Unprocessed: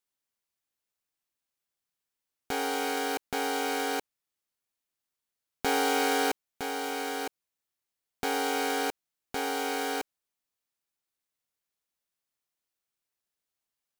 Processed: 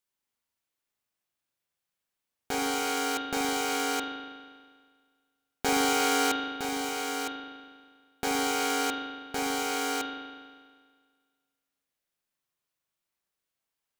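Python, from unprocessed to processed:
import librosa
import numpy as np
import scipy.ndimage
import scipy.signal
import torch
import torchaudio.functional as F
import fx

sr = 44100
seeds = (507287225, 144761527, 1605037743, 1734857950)

y = fx.rev_spring(x, sr, rt60_s=1.7, pass_ms=(40,), chirp_ms=35, drr_db=0.0)
y = fx.dynamic_eq(y, sr, hz=6900.0, q=1.4, threshold_db=-49.0, ratio=4.0, max_db=6)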